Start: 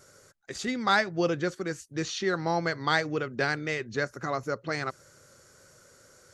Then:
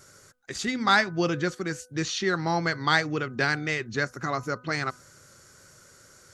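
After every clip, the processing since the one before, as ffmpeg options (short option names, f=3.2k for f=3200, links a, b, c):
-af "equalizer=f=530:w=1.5:g=-6,bandreject=f=249.6:t=h:w=4,bandreject=f=499.2:t=h:w=4,bandreject=f=748.8:t=h:w=4,bandreject=f=998.4:t=h:w=4,bandreject=f=1.248k:t=h:w=4,bandreject=f=1.4976k:t=h:w=4,volume=4dB"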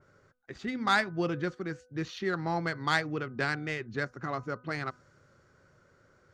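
-af "adynamicsmooth=sensitivity=0.5:basefreq=2.1k,adynamicequalizer=threshold=0.00794:dfrequency=3100:dqfactor=0.7:tfrequency=3100:tqfactor=0.7:attack=5:release=100:ratio=0.375:range=3:mode=boostabove:tftype=highshelf,volume=-4.5dB"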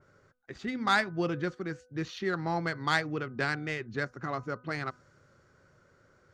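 -af anull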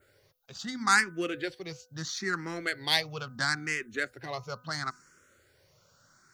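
-filter_complex "[0:a]crystalizer=i=7:c=0,asplit=2[a][b];[b]afreqshift=0.74[c];[a][c]amix=inputs=2:normalize=1,volume=-1.5dB"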